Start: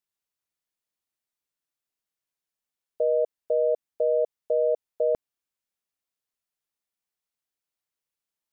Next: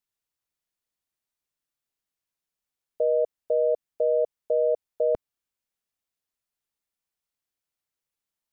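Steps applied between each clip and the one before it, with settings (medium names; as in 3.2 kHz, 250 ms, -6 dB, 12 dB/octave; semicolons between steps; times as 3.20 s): bass shelf 130 Hz +5.5 dB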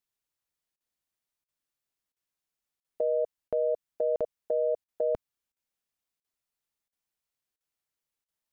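dynamic bell 440 Hz, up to -4 dB, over -33 dBFS, Q 0.77; crackling interface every 0.68 s, samples 2048, zero, from 0.76 s; trim -1 dB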